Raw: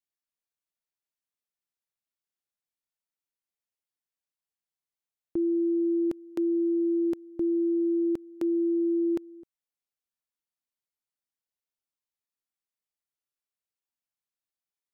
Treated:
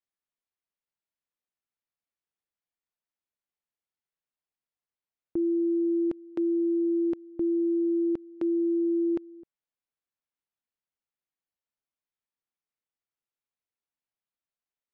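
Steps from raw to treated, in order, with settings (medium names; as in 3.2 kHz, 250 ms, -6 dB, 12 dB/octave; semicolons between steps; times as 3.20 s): Bessel low-pass 2.7 kHz, order 2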